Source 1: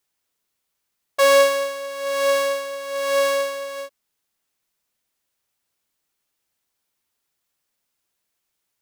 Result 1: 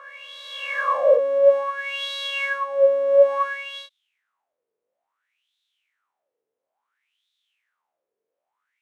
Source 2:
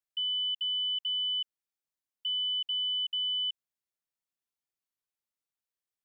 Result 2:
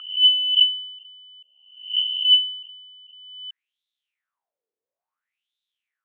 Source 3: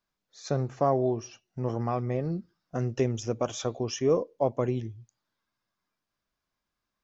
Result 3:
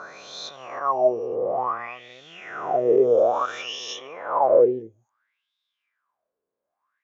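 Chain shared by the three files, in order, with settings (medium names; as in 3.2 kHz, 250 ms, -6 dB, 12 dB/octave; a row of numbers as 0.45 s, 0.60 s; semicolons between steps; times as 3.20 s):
reverse spectral sustain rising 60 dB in 2.62 s; peaking EQ 4.7 kHz -6.5 dB 0.44 oct; peak limiter -14.5 dBFS; wah-wah 0.58 Hz 440–3700 Hz, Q 9.5; peak normalisation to -6 dBFS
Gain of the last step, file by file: +14.5 dB, +21.0 dB, +17.0 dB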